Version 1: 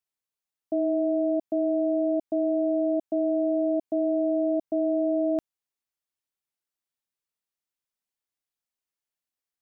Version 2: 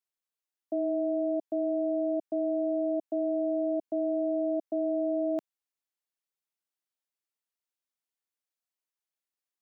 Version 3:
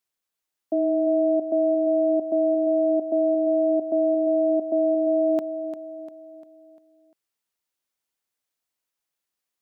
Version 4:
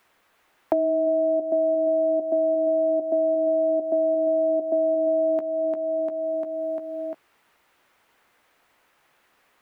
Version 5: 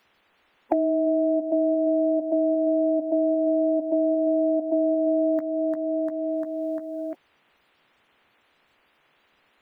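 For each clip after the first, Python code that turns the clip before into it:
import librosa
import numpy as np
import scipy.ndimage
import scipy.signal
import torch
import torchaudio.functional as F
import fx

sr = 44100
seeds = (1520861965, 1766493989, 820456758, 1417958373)

y1 = scipy.signal.sosfilt(scipy.signal.butter(2, 250.0, 'highpass', fs=sr, output='sos'), x)
y1 = y1 * librosa.db_to_amplitude(-3.5)
y2 = fx.echo_feedback(y1, sr, ms=348, feedback_pct=46, wet_db=-10.0)
y2 = y2 * librosa.db_to_amplitude(7.0)
y3 = fx.low_shelf(y2, sr, hz=360.0, db=-7.5)
y3 = fx.doubler(y3, sr, ms=14.0, db=-11.5)
y3 = fx.band_squash(y3, sr, depth_pct=100)
y4 = fx.spec_quant(y3, sr, step_db=30)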